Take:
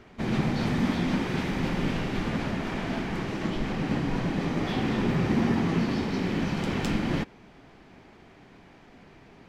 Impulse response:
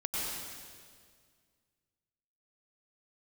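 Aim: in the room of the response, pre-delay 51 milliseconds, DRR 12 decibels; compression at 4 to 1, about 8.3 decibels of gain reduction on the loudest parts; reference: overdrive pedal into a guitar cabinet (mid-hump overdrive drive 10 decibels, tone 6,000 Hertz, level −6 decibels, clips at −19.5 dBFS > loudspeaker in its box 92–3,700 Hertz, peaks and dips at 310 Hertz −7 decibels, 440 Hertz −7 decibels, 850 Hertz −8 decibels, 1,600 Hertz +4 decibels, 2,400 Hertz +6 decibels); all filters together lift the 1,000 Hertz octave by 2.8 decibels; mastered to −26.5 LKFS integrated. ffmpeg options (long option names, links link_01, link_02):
-filter_complex "[0:a]equalizer=frequency=1000:width_type=o:gain=7.5,acompressor=threshold=-30dB:ratio=4,asplit=2[link_01][link_02];[1:a]atrim=start_sample=2205,adelay=51[link_03];[link_02][link_03]afir=irnorm=-1:irlink=0,volume=-17.5dB[link_04];[link_01][link_04]amix=inputs=2:normalize=0,asplit=2[link_05][link_06];[link_06]highpass=frequency=720:poles=1,volume=10dB,asoftclip=type=tanh:threshold=-19.5dB[link_07];[link_05][link_07]amix=inputs=2:normalize=0,lowpass=frequency=6000:poles=1,volume=-6dB,highpass=92,equalizer=frequency=310:width_type=q:width=4:gain=-7,equalizer=frequency=440:width_type=q:width=4:gain=-7,equalizer=frequency=850:width_type=q:width=4:gain=-8,equalizer=frequency=1600:width_type=q:width=4:gain=4,equalizer=frequency=2400:width_type=q:width=4:gain=6,lowpass=frequency=3700:width=0.5412,lowpass=frequency=3700:width=1.3066,volume=5.5dB"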